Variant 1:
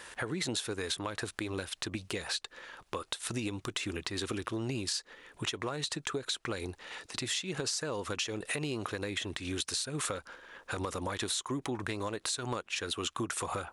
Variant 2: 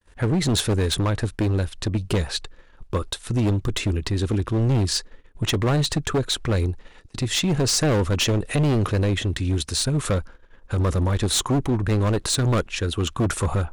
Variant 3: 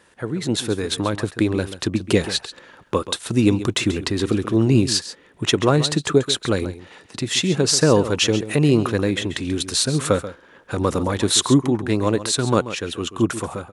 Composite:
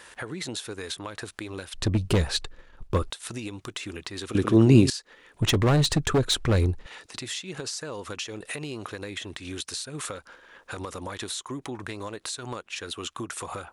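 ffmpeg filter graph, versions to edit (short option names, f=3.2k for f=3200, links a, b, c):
-filter_complex "[1:a]asplit=2[a][b];[0:a]asplit=4[c][d][e][f];[c]atrim=end=1.742[g];[a]atrim=start=1.738:end=3.102[h];[d]atrim=start=3.098:end=4.352[i];[2:a]atrim=start=4.348:end=4.902[j];[e]atrim=start=4.898:end=5.402[k];[b]atrim=start=5.398:end=6.862[l];[f]atrim=start=6.858[m];[g][h]acrossfade=d=0.004:c1=hsin:c2=hsin[n];[n][i]acrossfade=d=0.004:c1=hsin:c2=hsin[o];[o][j]acrossfade=d=0.004:c1=hsin:c2=hsin[p];[p][k]acrossfade=d=0.004:c1=hsin:c2=hsin[q];[q][l]acrossfade=d=0.004:c1=hsin:c2=hsin[r];[r][m]acrossfade=d=0.004:c1=hsin:c2=hsin"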